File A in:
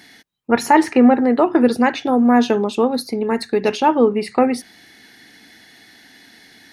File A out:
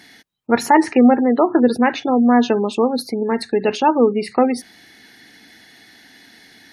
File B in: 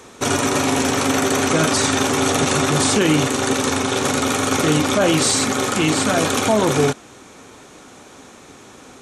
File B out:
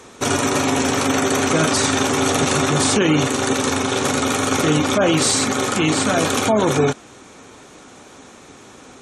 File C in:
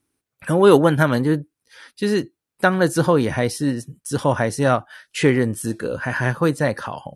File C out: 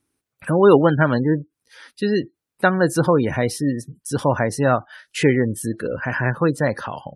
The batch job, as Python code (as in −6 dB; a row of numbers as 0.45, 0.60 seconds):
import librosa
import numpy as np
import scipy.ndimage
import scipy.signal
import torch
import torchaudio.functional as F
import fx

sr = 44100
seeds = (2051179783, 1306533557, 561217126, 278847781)

y = fx.spec_gate(x, sr, threshold_db=-30, keep='strong')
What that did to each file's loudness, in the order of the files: 0.0, 0.0, 0.0 LU